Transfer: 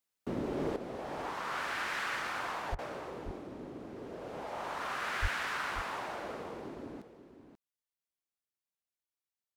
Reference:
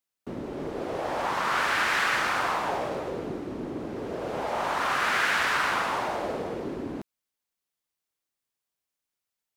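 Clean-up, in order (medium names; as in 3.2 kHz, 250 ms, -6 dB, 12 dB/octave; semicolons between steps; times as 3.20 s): de-plosive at 2.71/5.21 s; interpolate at 2.75 s, 35 ms; inverse comb 536 ms -11 dB; trim 0 dB, from 0.76 s +11 dB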